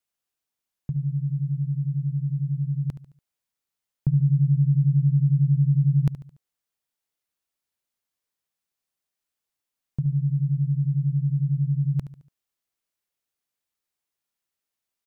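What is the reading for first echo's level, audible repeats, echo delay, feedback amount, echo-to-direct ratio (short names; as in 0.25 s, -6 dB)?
-13.5 dB, 3, 72 ms, 43%, -12.5 dB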